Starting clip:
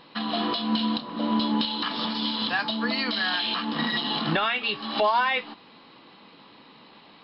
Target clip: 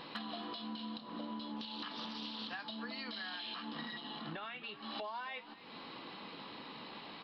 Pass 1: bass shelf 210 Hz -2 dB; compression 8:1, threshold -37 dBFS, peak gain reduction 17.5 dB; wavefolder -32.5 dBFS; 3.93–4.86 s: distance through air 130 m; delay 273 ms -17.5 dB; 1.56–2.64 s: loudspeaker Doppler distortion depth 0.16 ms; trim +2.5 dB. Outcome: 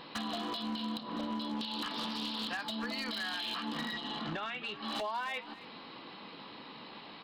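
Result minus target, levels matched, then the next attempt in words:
compression: peak gain reduction -6.5 dB
bass shelf 210 Hz -2 dB; compression 8:1, threshold -44.5 dBFS, peak gain reduction 24 dB; wavefolder -32.5 dBFS; 3.93–4.86 s: distance through air 130 m; delay 273 ms -17.5 dB; 1.56–2.64 s: loudspeaker Doppler distortion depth 0.16 ms; trim +2.5 dB

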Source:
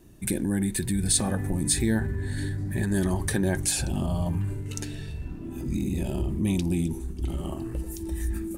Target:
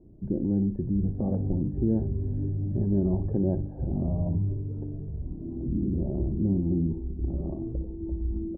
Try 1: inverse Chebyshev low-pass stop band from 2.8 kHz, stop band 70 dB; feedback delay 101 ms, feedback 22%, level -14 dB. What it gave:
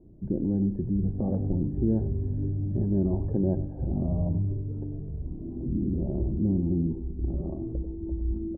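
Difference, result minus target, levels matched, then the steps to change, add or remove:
echo 41 ms late
change: feedback delay 60 ms, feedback 22%, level -14 dB

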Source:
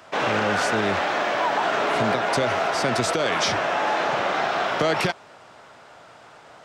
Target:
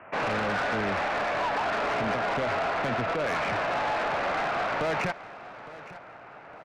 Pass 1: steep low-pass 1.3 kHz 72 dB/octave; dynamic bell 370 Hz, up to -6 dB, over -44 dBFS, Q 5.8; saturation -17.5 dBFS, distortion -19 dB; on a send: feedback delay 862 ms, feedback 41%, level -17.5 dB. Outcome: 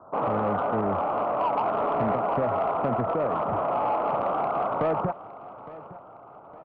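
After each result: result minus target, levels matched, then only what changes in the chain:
2 kHz band -13.5 dB; saturation: distortion -9 dB
change: steep low-pass 2.7 kHz 72 dB/octave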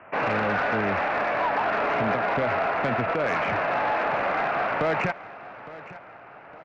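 saturation: distortion -7 dB
change: saturation -24.5 dBFS, distortion -10 dB

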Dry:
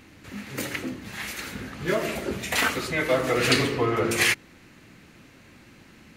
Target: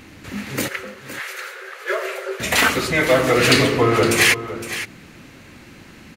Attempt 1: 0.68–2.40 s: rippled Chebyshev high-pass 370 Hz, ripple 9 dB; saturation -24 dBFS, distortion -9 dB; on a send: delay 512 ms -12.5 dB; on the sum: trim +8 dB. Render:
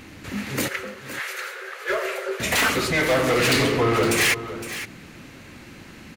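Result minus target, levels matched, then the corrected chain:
saturation: distortion +12 dB
0.68–2.40 s: rippled Chebyshev high-pass 370 Hz, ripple 9 dB; saturation -12.5 dBFS, distortion -21 dB; on a send: delay 512 ms -12.5 dB; on the sum: trim +8 dB

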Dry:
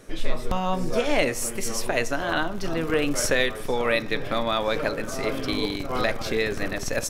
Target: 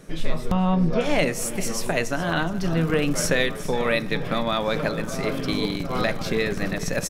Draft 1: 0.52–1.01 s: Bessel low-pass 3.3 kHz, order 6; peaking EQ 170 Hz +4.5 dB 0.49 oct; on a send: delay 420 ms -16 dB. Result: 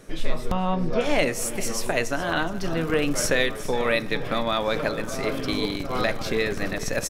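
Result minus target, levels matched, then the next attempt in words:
125 Hz band -4.5 dB
0.52–1.01 s: Bessel low-pass 3.3 kHz, order 6; peaking EQ 170 Hz +13 dB 0.49 oct; on a send: delay 420 ms -16 dB

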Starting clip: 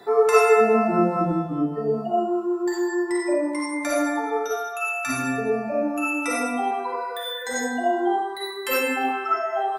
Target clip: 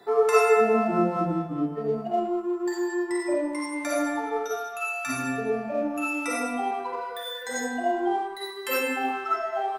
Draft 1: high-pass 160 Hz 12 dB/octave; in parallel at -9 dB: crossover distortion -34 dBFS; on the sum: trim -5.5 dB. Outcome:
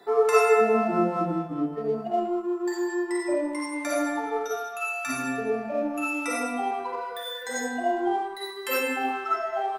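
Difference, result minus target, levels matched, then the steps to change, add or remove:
125 Hz band -2.5 dB
change: high-pass 56 Hz 12 dB/octave

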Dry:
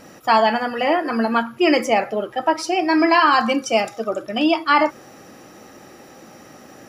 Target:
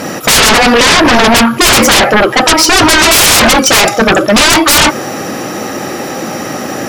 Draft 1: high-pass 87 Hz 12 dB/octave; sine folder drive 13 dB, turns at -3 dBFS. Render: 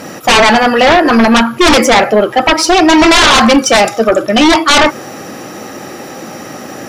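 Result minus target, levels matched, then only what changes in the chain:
sine folder: distortion -17 dB
change: sine folder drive 21 dB, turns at -3 dBFS

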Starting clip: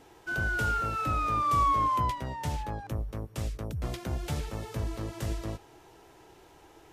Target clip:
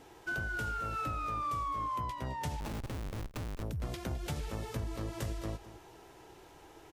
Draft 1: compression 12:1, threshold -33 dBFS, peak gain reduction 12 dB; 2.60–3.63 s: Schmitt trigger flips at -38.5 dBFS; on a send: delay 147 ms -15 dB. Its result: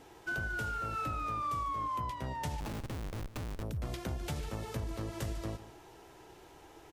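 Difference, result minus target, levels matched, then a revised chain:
echo 64 ms early
compression 12:1, threshold -33 dBFS, peak gain reduction 12 dB; 2.60–3.63 s: Schmitt trigger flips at -38.5 dBFS; on a send: delay 211 ms -15 dB

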